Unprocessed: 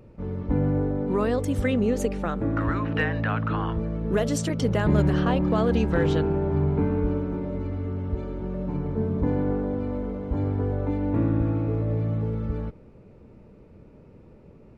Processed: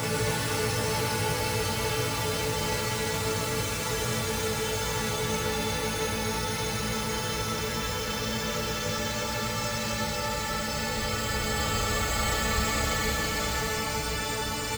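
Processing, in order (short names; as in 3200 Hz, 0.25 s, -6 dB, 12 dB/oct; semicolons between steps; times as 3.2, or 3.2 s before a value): spectral whitening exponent 0.3; Paulstretch 47×, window 0.10 s, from 12.24; loudspeakers at several distances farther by 11 m -2 dB, 55 m -4 dB, 93 m -10 dB; gain -5 dB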